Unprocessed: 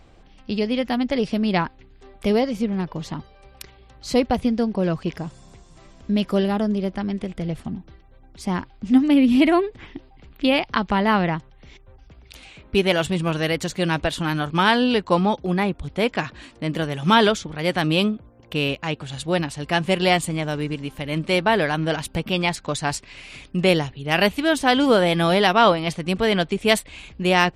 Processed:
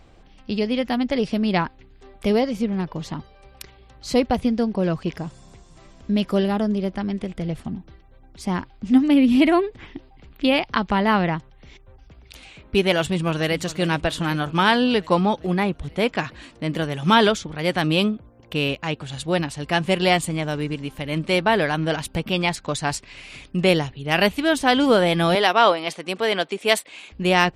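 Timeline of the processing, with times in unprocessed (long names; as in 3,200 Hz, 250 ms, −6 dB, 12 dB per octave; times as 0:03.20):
0:13.00–0:13.55: delay throw 400 ms, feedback 70%, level −16 dB
0:25.35–0:27.12: high-pass filter 350 Hz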